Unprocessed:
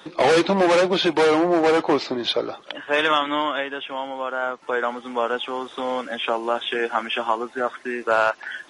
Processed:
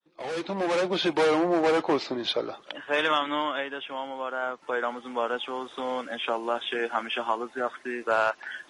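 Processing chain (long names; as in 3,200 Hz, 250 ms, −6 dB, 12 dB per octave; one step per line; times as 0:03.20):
fade in at the beginning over 1.11 s
level −5 dB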